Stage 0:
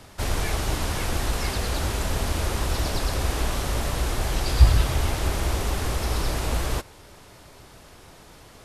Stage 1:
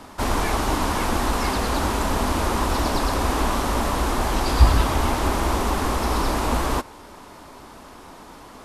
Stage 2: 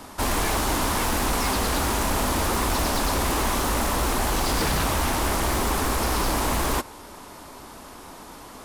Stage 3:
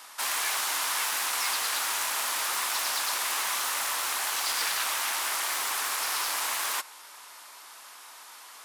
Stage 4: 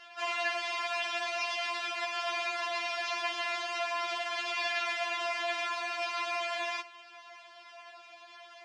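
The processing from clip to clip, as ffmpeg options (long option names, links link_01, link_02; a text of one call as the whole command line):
ffmpeg -i in.wav -af "equalizer=frequency=125:width_type=o:width=1:gain=-6,equalizer=frequency=250:width_type=o:width=1:gain=10,equalizer=frequency=1000:width_type=o:width=1:gain=10,volume=1dB" out.wav
ffmpeg -i in.wav -af "crystalizer=i=1:c=0,aeval=exprs='0.126*(abs(mod(val(0)/0.126+3,4)-2)-1)':channel_layout=same" out.wav
ffmpeg -i in.wav -af "highpass=1400" out.wav
ffmpeg -i in.wav -af "highpass=330,equalizer=frequency=400:width_type=q:width=4:gain=6,equalizer=frequency=690:width_type=q:width=4:gain=8,equalizer=frequency=1200:width_type=q:width=4:gain=-6,equalizer=frequency=2500:width_type=q:width=4:gain=5,equalizer=frequency=4100:width_type=q:width=4:gain=-5,lowpass=frequency=4500:width=0.5412,lowpass=frequency=4500:width=1.3066,afftfilt=real='re*4*eq(mod(b,16),0)':imag='im*4*eq(mod(b,16),0)':win_size=2048:overlap=0.75" out.wav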